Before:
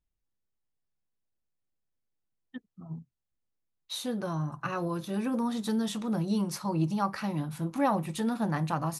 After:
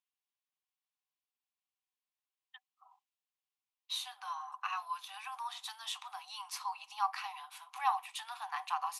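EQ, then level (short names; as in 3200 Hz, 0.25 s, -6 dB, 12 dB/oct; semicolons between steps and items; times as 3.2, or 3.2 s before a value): rippled Chebyshev high-pass 740 Hz, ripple 9 dB; +3.0 dB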